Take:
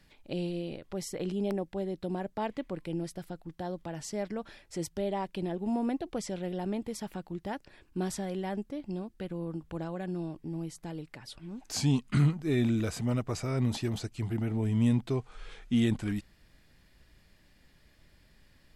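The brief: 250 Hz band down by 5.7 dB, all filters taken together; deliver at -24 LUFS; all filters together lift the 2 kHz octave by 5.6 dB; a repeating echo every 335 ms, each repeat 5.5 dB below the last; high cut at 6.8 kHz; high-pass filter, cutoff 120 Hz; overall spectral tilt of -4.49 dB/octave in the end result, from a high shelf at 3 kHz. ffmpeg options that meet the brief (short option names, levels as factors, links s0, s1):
-af "highpass=120,lowpass=6800,equalizer=f=250:t=o:g=-7,equalizer=f=2000:t=o:g=4,highshelf=f=3000:g=8,aecho=1:1:335|670|1005|1340|1675|2010|2345:0.531|0.281|0.149|0.079|0.0419|0.0222|0.0118,volume=3.55"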